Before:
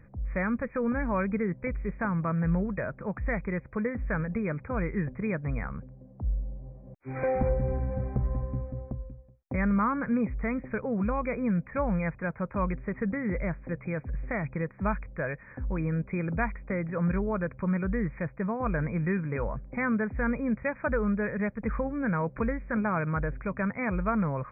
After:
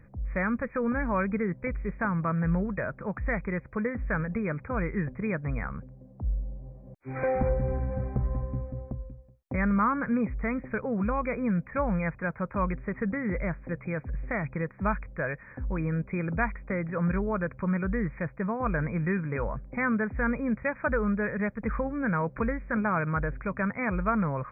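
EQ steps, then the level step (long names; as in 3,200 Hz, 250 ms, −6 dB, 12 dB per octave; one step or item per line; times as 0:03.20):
dynamic equaliser 1,400 Hz, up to +3 dB, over −47 dBFS, Q 1.3
0.0 dB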